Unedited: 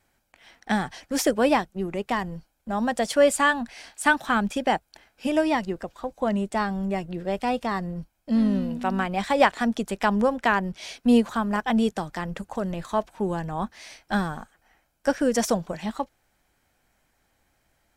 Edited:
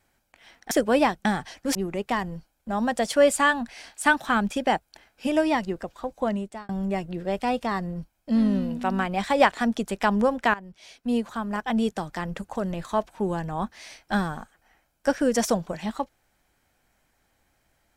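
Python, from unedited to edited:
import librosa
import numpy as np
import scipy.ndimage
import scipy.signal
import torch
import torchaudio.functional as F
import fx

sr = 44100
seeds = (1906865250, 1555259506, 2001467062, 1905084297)

y = fx.edit(x, sr, fx.move(start_s=0.71, length_s=0.5, to_s=1.75),
    fx.fade_out_span(start_s=6.22, length_s=0.47),
    fx.fade_in_from(start_s=10.54, length_s=1.67, floor_db=-17.0), tone=tone)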